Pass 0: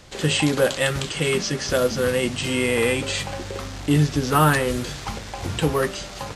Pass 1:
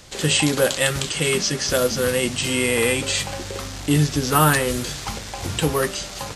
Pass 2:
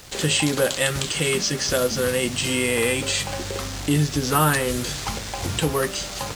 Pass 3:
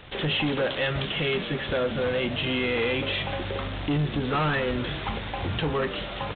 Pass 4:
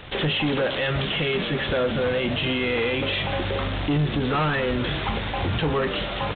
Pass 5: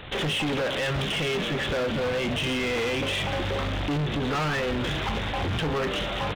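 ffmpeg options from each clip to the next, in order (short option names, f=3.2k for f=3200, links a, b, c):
-af "highshelf=f=4.3k:g=8.5"
-filter_complex "[0:a]asplit=2[a][b];[b]acompressor=threshold=-25dB:ratio=6,volume=1.5dB[c];[a][c]amix=inputs=2:normalize=0,acrusher=bits=5:mix=0:aa=0.5,volume=-5dB"
-filter_complex "[0:a]aresample=8000,asoftclip=type=tanh:threshold=-21dB,aresample=44100,asplit=7[a][b][c][d][e][f][g];[b]adelay=162,afreqshift=68,volume=-15.5dB[h];[c]adelay=324,afreqshift=136,volume=-20.2dB[i];[d]adelay=486,afreqshift=204,volume=-25dB[j];[e]adelay=648,afreqshift=272,volume=-29.7dB[k];[f]adelay=810,afreqshift=340,volume=-34.4dB[l];[g]adelay=972,afreqshift=408,volume=-39.2dB[m];[a][h][i][j][k][l][m]amix=inputs=7:normalize=0"
-af "alimiter=limit=-23dB:level=0:latency=1:release=24,volume=5.5dB"
-af "volume=24.5dB,asoftclip=hard,volume=-24.5dB"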